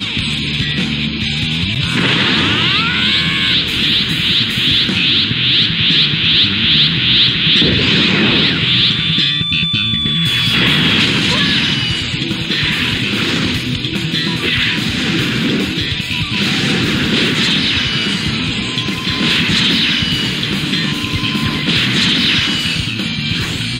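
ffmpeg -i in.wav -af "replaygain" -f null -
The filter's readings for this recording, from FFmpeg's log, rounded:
track_gain = -9.0 dB
track_peak = 0.597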